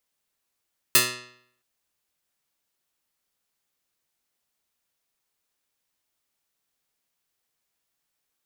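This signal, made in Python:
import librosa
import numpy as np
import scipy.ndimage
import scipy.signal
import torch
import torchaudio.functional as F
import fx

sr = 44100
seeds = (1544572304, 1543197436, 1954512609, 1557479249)

y = fx.pluck(sr, length_s=0.67, note=47, decay_s=0.67, pick=0.16, brightness='medium')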